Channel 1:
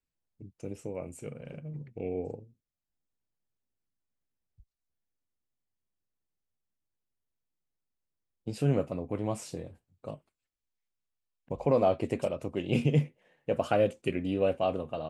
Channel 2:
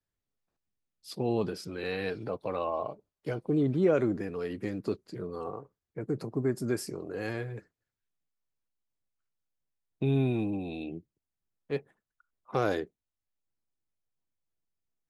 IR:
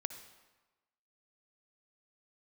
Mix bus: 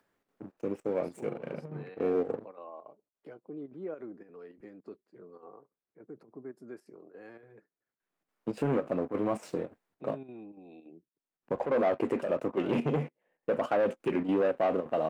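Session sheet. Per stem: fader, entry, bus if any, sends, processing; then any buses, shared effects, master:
-3.0 dB, 0.00 s, no send, waveshaping leveller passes 3
-13.5 dB, 0.00 s, no send, upward compressor, threshold -30 dBFS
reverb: none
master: square tremolo 3.5 Hz, depth 60%, duty 80%; three-band isolator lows -22 dB, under 190 Hz, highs -14 dB, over 2.2 kHz; peak limiter -18.5 dBFS, peak gain reduction 5 dB

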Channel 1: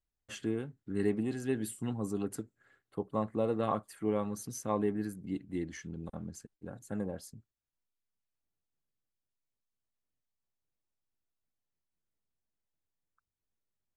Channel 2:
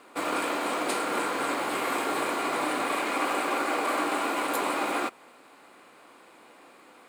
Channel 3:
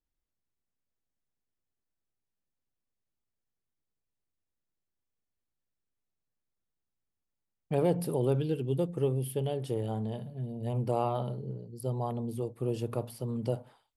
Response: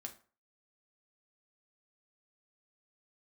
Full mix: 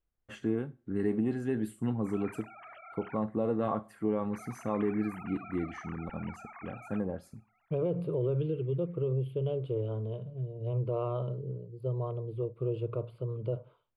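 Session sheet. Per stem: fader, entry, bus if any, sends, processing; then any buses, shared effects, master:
+1.5 dB, 0.00 s, bus A, send -6.5 dB, none
-17.5 dB, 1.90 s, muted 3.17–4.33 s, no bus, no send, formants replaced by sine waves; Bessel high-pass 1.1 kHz
-1.0 dB, 0.00 s, bus A, no send, peaking EQ 200 Hz +8.5 dB 1.8 oct; static phaser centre 1.2 kHz, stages 8
bus A: 0.0 dB, Bessel low-pass 2 kHz, order 2; peak limiter -23 dBFS, peak gain reduction 6.5 dB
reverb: on, RT60 0.40 s, pre-delay 4 ms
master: none

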